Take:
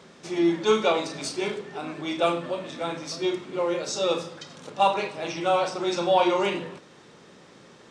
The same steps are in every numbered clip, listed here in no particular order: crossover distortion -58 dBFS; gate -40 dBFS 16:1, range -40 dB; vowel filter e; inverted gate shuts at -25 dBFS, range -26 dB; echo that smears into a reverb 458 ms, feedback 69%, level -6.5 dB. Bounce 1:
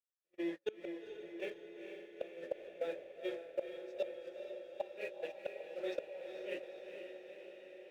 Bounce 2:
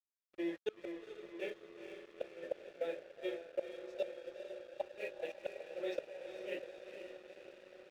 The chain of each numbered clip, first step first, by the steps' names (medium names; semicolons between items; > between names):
vowel filter > crossover distortion > gate > inverted gate > echo that smears into a reverb; vowel filter > gate > inverted gate > echo that smears into a reverb > crossover distortion